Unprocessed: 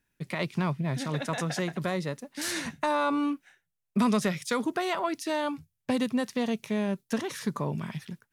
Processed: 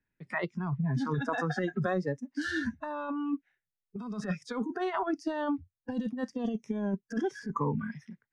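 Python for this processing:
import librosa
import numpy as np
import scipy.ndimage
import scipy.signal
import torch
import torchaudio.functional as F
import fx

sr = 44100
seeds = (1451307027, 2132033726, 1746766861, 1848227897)

y = fx.noise_reduce_blind(x, sr, reduce_db=23)
y = fx.peak_eq(y, sr, hz=2000.0, db=fx.steps((0.0, 7.0), (7.46, 15.0)), octaves=0.44)
y = fx.over_compress(y, sr, threshold_db=-31.0, ratio=-0.5)
y = fx.spacing_loss(y, sr, db_at_10k=30)
y = fx.band_squash(y, sr, depth_pct=40)
y = y * 10.0 ** (2.5 / 20.0)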